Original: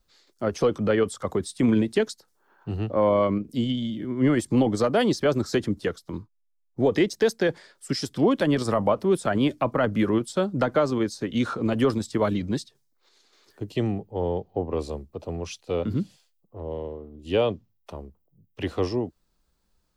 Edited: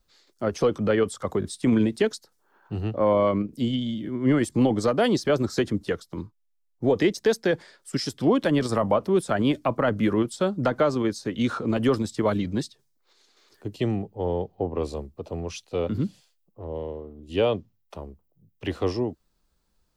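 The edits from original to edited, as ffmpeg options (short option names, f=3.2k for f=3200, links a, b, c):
-filter_complex "[0:a]asplit=3[a][b][c];[a]atrim=end=1.422[d];[b]atrim=start=1.398:end=1.422[e];[c]atrim=start=1.398[f];[d][e]acrossfade=d=0.004:c1=hsin:c2=hsin[g];[g][f]acrossfade=d=0.004:c1=hsin:c2=hsin"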